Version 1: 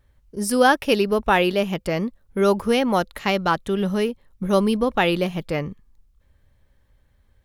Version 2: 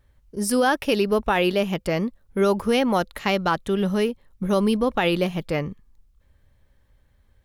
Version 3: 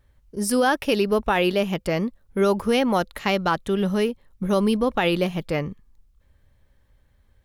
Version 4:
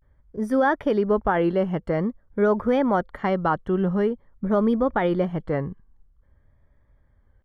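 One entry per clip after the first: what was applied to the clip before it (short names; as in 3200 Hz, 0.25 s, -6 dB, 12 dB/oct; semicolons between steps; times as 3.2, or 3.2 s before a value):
limiter -11 dBFS, peak gain reduction 6 dB
nothing audible
polynomial smoothing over 41 samples; vibrato 0.48 Hz 93 cents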